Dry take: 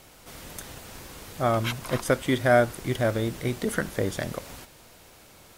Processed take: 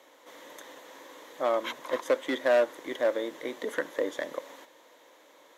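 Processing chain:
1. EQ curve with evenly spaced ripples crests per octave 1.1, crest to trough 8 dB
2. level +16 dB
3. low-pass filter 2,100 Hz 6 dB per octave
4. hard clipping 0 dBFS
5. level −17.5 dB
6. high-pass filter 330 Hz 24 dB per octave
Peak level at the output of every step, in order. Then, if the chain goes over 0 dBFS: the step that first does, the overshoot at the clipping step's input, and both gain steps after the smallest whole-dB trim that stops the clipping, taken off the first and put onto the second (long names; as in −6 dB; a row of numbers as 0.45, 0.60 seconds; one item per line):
−7.5, +8.5, +7.5, 0.0, −17.5, −12.5 dBFS
step 2, 7.5 dB
step 2 +8 dB, step 5 −9.5 dB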